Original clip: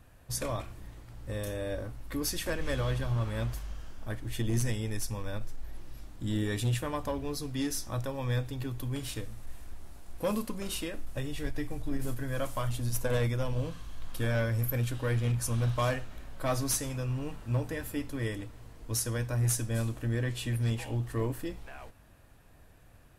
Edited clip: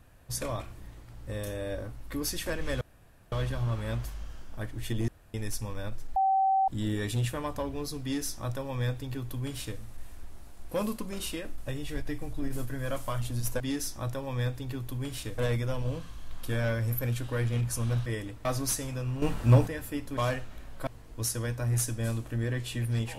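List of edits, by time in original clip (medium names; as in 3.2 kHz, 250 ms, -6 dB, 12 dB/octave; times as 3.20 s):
2.81 s: insert room tone 0.51 s
4.57–4.83 s: room tone
5.65–6.17 s: bleep 771 Hz -21.5 dBFS
7.51–9.29 s: copy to 13.09 s
15.77–16.47 s: swap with 18.19–18.58 s
17.24–17.69 s: gain +10.5 dB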